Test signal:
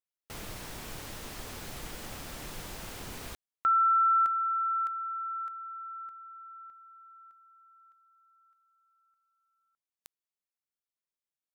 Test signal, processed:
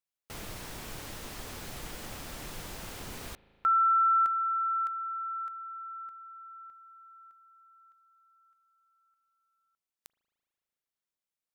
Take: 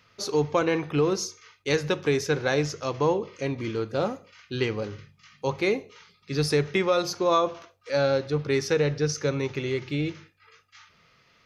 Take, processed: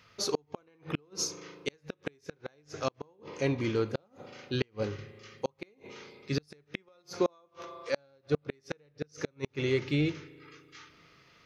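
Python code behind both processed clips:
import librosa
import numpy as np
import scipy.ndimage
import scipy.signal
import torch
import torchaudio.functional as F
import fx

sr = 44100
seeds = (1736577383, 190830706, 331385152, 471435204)

y = fx.rev_spring(x, sr, rt60_s=2.9, pass_ms=(37,), chirp_ms=30, drr_db=19.0)
y = fx.gate_flip(y, sr, shuts_db=-16.0, range_db=-39)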